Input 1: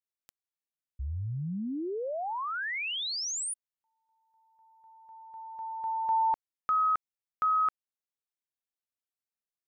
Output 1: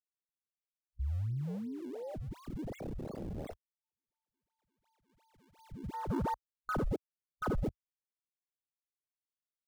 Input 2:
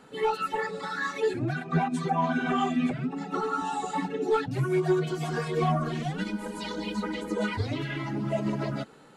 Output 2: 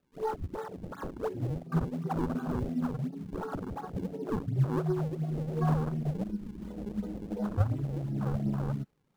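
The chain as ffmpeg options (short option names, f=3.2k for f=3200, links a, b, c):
-af "asubboost=boost=4:cutoff=170,acrusher=samples=40:mix=1:aa=0.000001:lfo=1:lforange=64:lforate=2.8,afwtdn=0.0355,volume=-5.5dB"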